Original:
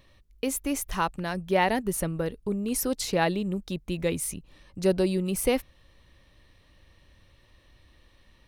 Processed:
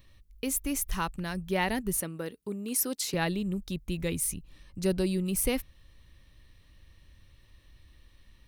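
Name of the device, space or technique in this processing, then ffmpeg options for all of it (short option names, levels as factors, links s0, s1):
smiley-face EQ: -filter_complex "[0:a]asettb=1/sr,asplit=3[s0][s1][s2];[s0]atrim=end=2.004[s3];[s1]atrim=start=2:end=3.14,asetpts=PTS-STARTPTS,afade=t=in:d=0.004:c=qsin,afade=t=out:st=1.136:d=0.004:c=qsin,highpass=250[s4];[s2]atrim=start=3.136[s5];[s3][s4]acrossfade=d=0.004:c1=hsin:c2=qsin[s6];[s6][s5]acrossfade=d=0.004:c1=qsin:c2=hsin,lowshelf=f=110:g=6.5,equalizer=f=640:t=o:w=1.5:g=-6,highshelf=f=9900:g=8.5,volume=0.75"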